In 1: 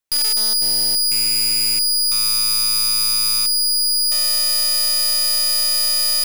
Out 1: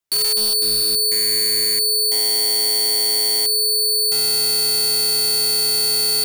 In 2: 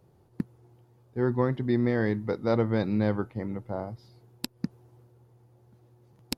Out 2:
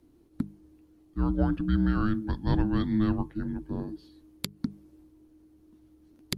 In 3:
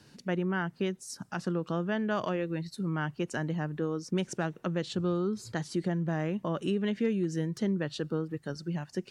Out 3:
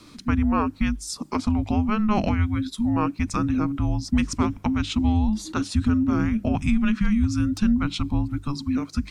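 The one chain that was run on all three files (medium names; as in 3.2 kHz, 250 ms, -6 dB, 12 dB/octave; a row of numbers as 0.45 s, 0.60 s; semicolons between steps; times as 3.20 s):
frequency shift -430 Hz; hum notches 50/100/150/200 Hz; peak normalisation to -9 dBFS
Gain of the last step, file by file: -0.5 dB, +1.0 dB, +9.5 dB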